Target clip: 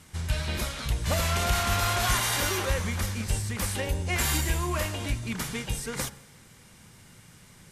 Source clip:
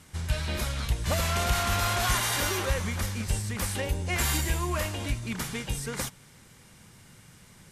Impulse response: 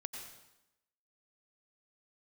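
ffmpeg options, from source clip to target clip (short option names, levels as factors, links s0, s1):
-filter_complex "[0:a]bandreject=f=68.89:t=h:w=4,bandreject=f=137.78:t=h:w=4,bandreject=f=206.67:t=h:w=4,bandreject=f=275.56:t=h:w=4,bandreject=f=344.45:t=h:w=4,bandreject=f=413.34:t=h:w=4,bandreject=f=482.23:t=h:w=4,bandreject=f=551.12:t=h:w=4,bandreject=f=620.01:t=h:w=4,bandreject=f=688.9:t=h:w=4,bandreject=f=757.79:t=h:w=4,bandreject=f=826.68:t=h:w=4,bandreject=f=895.57:t=h:w=4,bandreject=f=964.46:t=h:w=4,bandreject=f=1033.35:t=h:w=4,bandreject=f=1102.24:t=h:w=4,bandreject=f=1171.13:t=h:w=4,bandreject=f=1240.02:t=h:w=4,bandreject=f=1308.91:t=h:w=4,bandreject=f=1377.8:t=h:w=4,bandreject=f=1446.69:t=h:w=4,bandreject=f=1515.58:t=h:w=4,bandreject=f=1584.47:t=h:w=4,bandreject=f=1653.36:t=h:w=4,bandreject=f=1722.25:t=h:w=4,bandreject=f=1791.14:t=h:w=4,bandreject=f=1860.03:t=h:w=4,asplit=2[s0][s1];[1:a]atrim=start_sample=2205[s2];[s1][s2]afir=irnorm=-1:irlink=0,volume=0.168[s3];[s0][s3]amix=inputs=2:normalize=0"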